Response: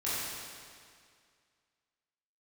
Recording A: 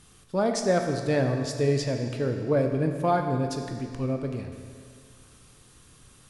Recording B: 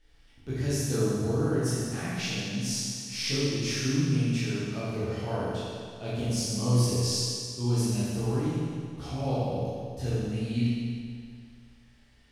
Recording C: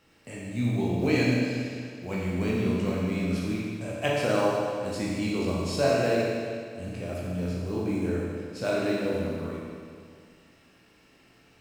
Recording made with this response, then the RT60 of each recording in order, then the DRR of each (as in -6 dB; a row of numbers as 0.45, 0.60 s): B; 2.1, 2.1, 2.1 s; 4.0, -11.0, -6.0 dB